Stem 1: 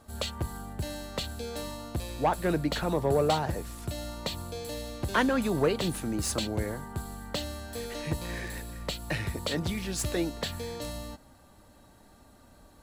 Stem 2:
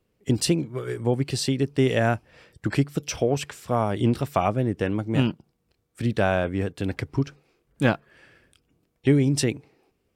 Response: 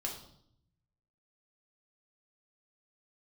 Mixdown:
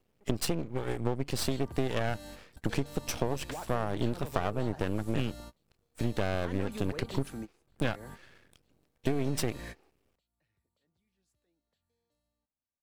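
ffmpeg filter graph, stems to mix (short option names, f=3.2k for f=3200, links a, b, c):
-filter_complex "[0:a]alimiter=limit=-24dB:level=0:latency=1:release=168,adelay=1300,volume=-6.5dB[a];[1:a]aeval=exprs='max(val(0),0)':c=same,volume=1dB,asplit=2[b][c];[c]apad=whole_len=623075[d];[a][d]sidechaingate=range=-39dB:threshold=-49dB:ratio=16:detection=peak[e];[e][b]amix=inputs=2:normalize=0,acompressor=threshold=-25dB:ratio=5"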